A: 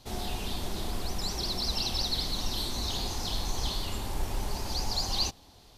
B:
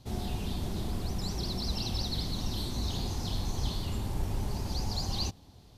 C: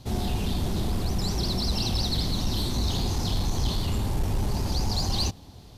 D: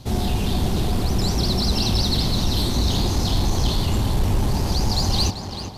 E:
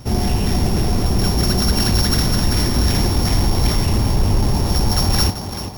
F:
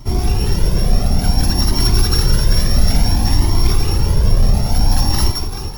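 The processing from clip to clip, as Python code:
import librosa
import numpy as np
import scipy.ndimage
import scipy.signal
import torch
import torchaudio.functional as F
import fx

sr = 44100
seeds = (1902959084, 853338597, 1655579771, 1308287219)

y1 = fx.peak_eq(x, sr, hz=120.0, db=12.5, octaves=2.9)
y1 = y1 * librosa.db_to_amplitude(-6.0)
y2 = 10.0 ** (-25.5 / 20.0) * np.tanh(y1 / 10.0 ** (-25.5 / 20.0))
y2 = y2 * librosa.db_to_amplitude(8.0)
y3 = fx.echo_tape(y2, sr, ms=385, feedback_pct=54, wet_db=-4.5, lp_hz=3200.0, drive_db=22.0, wow_cents=37)
y3 = y3 * librosa.db_to_amplitude(5.5)
y4 = np.r_[np.sort(y3[:len(y3) // 8 * 8].reshape(-1, 8), axis=1).ravel(), y3[len(y3) // 8 * 8:]]
y4 = y4 * librosa.db_to_amplitude(4.0)
y5 = fx.octave_divider(y4, sr, octaves=2, level_db=1.0)
y5 = y5 + 10.0 ** (-8.5 / 20.0) * np.pad(y5, (int(166 * sr / 1000.0), 0))[:len(y5)]
y5 = fx.comb_cascade(y5, sr, direction='rising', hz=0.57)
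y5 = y5 * librosa.db_to_amplitude(2.5)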